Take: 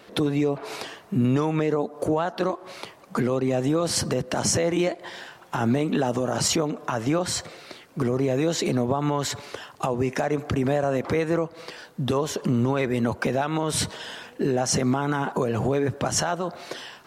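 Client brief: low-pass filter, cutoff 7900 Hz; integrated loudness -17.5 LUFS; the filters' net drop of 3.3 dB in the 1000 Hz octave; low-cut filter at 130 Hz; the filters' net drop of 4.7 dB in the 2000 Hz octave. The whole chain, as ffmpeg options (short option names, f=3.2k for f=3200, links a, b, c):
-af "highpass=130,lowpass=7.9k,equalizer=f=1k:t=o:g=-3.5,equalizer=f=2k:t=o:g=-5,volume=9dB"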